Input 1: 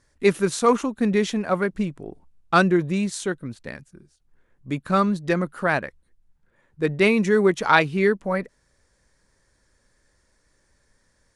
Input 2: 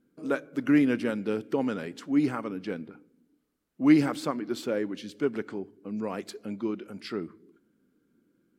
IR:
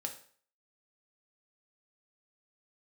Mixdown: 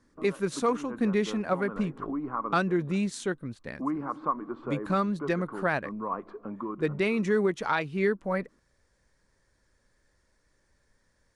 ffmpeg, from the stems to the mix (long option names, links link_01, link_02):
-filter_complex "[0:a]highshelf=frequency=6400:gain=-6.5,volume=-4dB,asplit=2[link_01][link_02];[1:a]acompressor=threshold=-36dB:ratio=2.5,lowpass=frequency=1100:width_type=q:width=8.1,volume=0dB[link_03];[link_02]apad=whole_len=378792[link_04];[link_03][link_04]sidechaincompress=threshold=-28dB:ratio=8:attack=27:release=175[link_05];[link_01][link_05]amix=inputs=2:normalize=0,alimiter=limit=-15.5dB:level=0:latency=1:release=377"